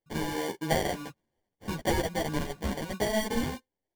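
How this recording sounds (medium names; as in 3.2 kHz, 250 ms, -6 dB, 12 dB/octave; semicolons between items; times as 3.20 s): aliases and images of a low sample rate 1.3 kHz, jitter 0%; a shimmering, thickened sound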